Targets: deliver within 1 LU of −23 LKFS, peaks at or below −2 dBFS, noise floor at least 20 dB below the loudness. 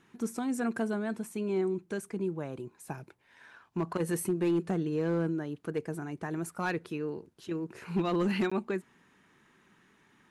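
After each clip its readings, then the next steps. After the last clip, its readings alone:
share of clipped samples 0.5%; peaks flattened at −22.5 dBFS; number of dropouts 1; longest dropout 15 ms; integrated loudness −33.5 LKFS; sample peak −22.5 dBFS; target loudness −23.0 LKFS
→ clipped peaks rebuilt −22.5 dBFS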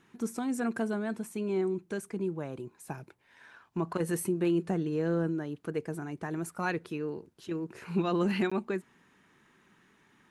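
share of clipped samples 0.0%; number of dropouts 1; longest dropout 15 ms
→ repair the gap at 0:08.50, 15 ms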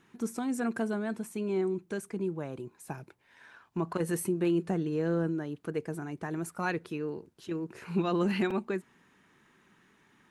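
number of dropouts 0; integrated loudness −33.0 LKFS; sample peak −17.5 dBFS; target loudness −23.0 LKFS
→ level +10 dB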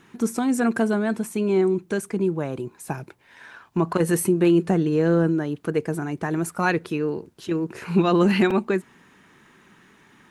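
integrated loudness −23.0 LKFS; sample peak −7.5 dBFS; background noise floor −56 dBFS

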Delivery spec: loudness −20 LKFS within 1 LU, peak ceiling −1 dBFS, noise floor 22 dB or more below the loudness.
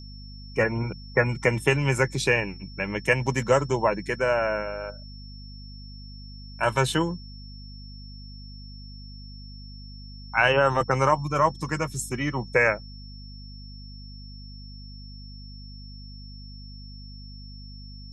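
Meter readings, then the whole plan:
mains hum 50 Hz; hum harmonics up to 250 Hz; level of the hum −40 dBFS; interfering tone 5,400 Hz; level of the tone −47 dBFS; integrated loudness −24.5 LKFS; sample peak −6.5 dBFS; target loudness −20.0 LKFS
→ mains-hum notches 50/100/150/200/250 Hz
notch filter 5,400 Hz, Q 30
level +4.5 dB

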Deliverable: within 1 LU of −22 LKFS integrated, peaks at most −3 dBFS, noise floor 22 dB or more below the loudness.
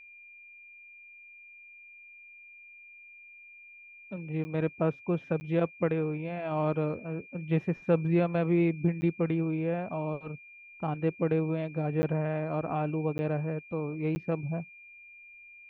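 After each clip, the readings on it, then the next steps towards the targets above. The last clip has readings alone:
number of dropouts 6; longest dropout 10 ms; interfering tone 2,400 Hz; level of the tone −49 dBFS; integrated loudness −30.5 LKFS; sample peak −14.0 dBFS; target loudness −22.0 LKFS
→ repair the gap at 0:04.44/0:05.40/0:09.01/0:12.02/0:13.18/0:14.15, 10 ms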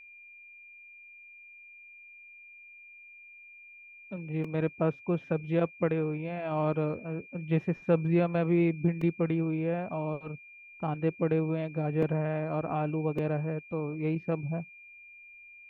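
number of dropouts 0; interfering tone 2,400 Hz; level of the tone −49 dBFS
→ notch filter 2,400 Hz, Q 30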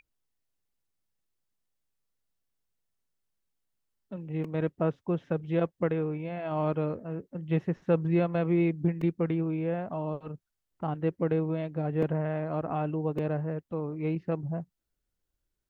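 interfering tone none found; integrated loudness −30.5 LKFS; sample peak −14.0 dBFS; target loudness −22.0 LKFS
→ level +8.5 dB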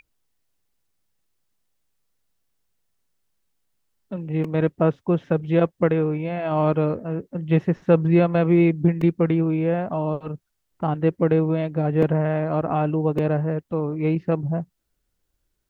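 integrated loudness −22.0 LKFS; sample peak −5.5 dBFS; background noise floor −75 dBFS

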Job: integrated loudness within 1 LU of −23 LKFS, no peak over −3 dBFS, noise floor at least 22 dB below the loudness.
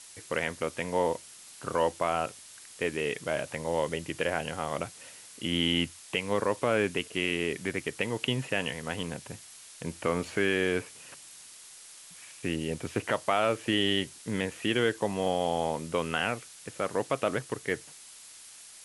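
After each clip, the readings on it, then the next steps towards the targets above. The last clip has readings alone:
background noise floor −50 dBFS; target noise floor −53 dBFS; integrated loudness −30.5 LKFS; sample peak −11.5 dBFS; target loudness −23.0 LKFS
→ broadband denoise 6 dB, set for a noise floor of −50 dBFS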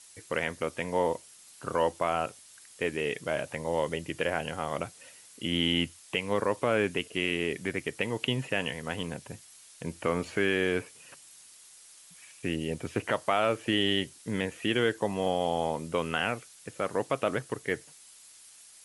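background noise floor −54 dBFS; integrated loudness −30.5 LKFS; sample peak −11.5 dBFS; target loudness −23.0 LKFS
→ level +7.5 dB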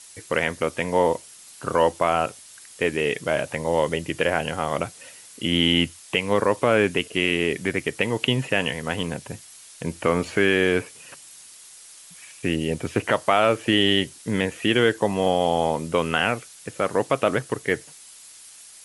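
integrated loudness −23.0 LKFS; sample peak −4.0 dBFS; background noise floor −46 dBFS

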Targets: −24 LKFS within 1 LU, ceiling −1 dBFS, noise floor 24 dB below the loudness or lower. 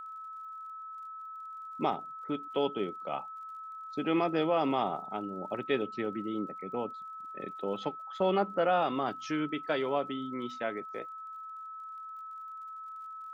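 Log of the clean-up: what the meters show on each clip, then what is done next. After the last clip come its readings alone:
crackle rate 48 per second; interfering tone 1,300 Hz; level of the tone −41 dBFS; integrated loudness −34.5 LKFS; sample peak −16.0 dBFS; target loudness −24.0 LKFS
→ click removal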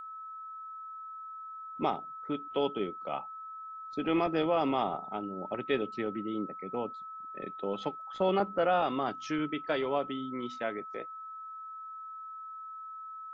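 crackle rate 0.075 per second; interfering tone 1,300 Hz; level of the tone −41 dBFS
→ notch filter 1,300 Hz, Q 30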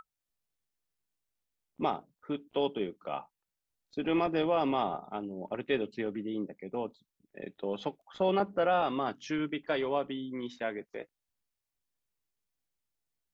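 interfering tone none found; integrated loudness −33.5 LKFS; sample peak −16.0 dBFS; target loudness −24.0 LKFS
→ level +9.5 dB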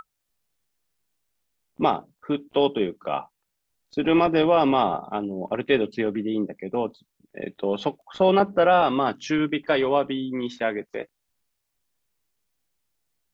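integrated loudness −24.0 LKFS; sample peak −6.5 dBFS; background noise floor −79 dBFS

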